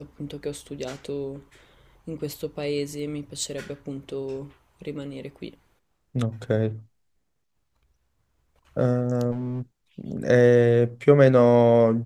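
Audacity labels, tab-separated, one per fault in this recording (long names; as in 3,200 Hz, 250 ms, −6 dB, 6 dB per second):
9.310000	9.620000	clipping −26 dBFS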